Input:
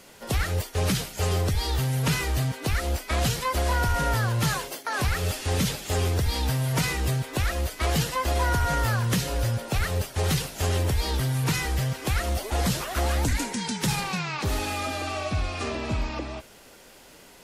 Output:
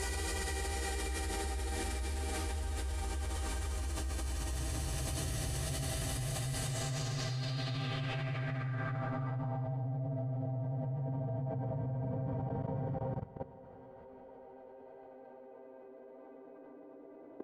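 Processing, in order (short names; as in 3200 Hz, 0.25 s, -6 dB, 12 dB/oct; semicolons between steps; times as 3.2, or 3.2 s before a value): Paulstretch 48×, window 0.10 s, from 2.26; low-pass sweep 9400 Hz -> 640 Hz, 6.56–10.02; level quantiser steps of 17 dB; gain -2 dB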